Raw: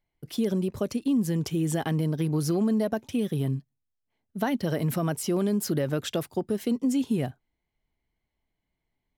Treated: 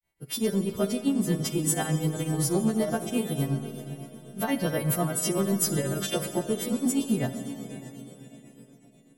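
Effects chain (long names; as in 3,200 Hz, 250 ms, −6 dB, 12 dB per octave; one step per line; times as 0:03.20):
every partial snapped to a pitch grid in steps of 2 semitones
parametric band 5,000 Hz −5 dB 0.91 octaves
in parallel at −5 dB: soft clipping −26 dBFS, distortion −12 dB
on the sum: feedback delay with all-pass diffusion 551 ms, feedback 40%, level −12.5 dB
granular cloud 179 ms, grains 8.1 per second, spray 14 ms, pitch spread up and down by 0 semitones
four-comb reverb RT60 2.7 s, combs from 27 ms, DRR 9 dB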